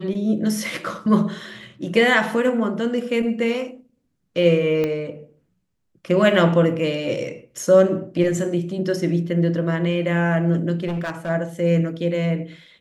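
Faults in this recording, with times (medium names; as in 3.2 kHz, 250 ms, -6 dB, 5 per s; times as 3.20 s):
4.84 s: pop -12 dBFS
10.87–11.30 s: clipped -22 dBFS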